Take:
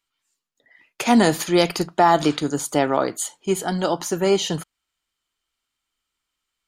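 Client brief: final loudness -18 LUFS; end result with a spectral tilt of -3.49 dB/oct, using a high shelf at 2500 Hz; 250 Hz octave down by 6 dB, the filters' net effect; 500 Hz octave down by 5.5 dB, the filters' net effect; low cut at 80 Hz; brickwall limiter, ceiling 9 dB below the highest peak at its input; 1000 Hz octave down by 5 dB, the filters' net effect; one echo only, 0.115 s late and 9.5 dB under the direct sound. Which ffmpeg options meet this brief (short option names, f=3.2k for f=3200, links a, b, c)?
-af "highpass=80,equalizer=f=250:t=o:g=-6.5,equalizer=f=500:t=o:g=-4,equalizer=f=1k:t=o:g=-5.5,highshelf=f=2.5k:g=6,alimiter=limit=-13.5dB:level=0:latency=1,aecho=1:1:115:0.335,volume=7dB"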